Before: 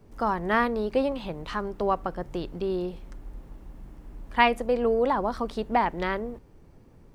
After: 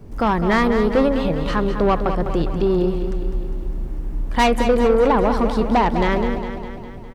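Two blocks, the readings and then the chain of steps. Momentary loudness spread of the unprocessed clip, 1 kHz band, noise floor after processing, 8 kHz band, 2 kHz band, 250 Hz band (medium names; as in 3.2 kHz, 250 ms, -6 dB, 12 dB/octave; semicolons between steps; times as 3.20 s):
17 LU, +6.0 dB, -34 dBFS, no reading, +4.5 dB, +11.5 dB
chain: bass shelf 340 Hz +7.5 dB; saturation -19 dBFS, distortion -11 dB; on a send: feedback delay 203 ms, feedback 59%, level -8.5 dB; on the sum: trim +8 dB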